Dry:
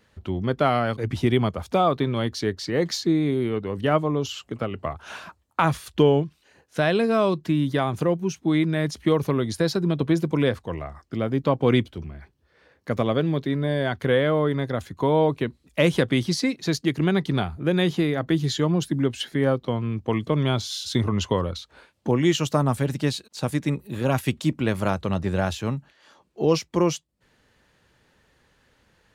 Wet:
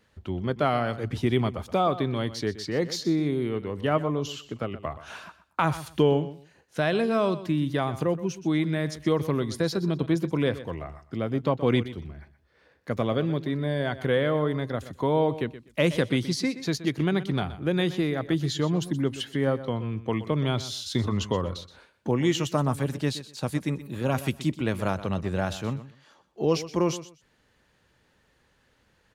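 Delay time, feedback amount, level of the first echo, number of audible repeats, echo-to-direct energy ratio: 124 ms, 19%, −14.5 dB, 2, −14.5 dB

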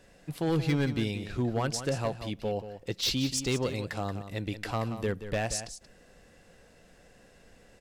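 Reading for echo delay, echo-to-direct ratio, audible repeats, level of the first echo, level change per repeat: 180 ms, −11.0 dB, 1, −11.0 dB, repeats not evenly spaced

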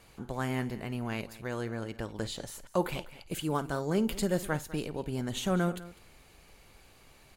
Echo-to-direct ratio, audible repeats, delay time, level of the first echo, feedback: −15.5 dB, 2, 53 ms, −19.5 dB, repeats not evenly spaced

